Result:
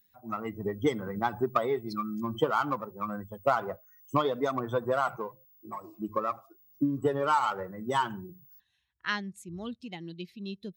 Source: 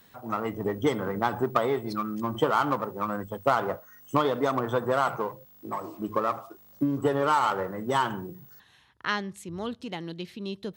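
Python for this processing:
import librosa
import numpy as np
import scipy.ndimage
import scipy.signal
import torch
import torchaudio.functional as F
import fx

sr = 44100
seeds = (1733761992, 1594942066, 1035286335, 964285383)

y = fx.bin_expand(x, sr, power=1.5)
y = fx.high_shelf(y, sr, hz=9100.0, db=-4.0)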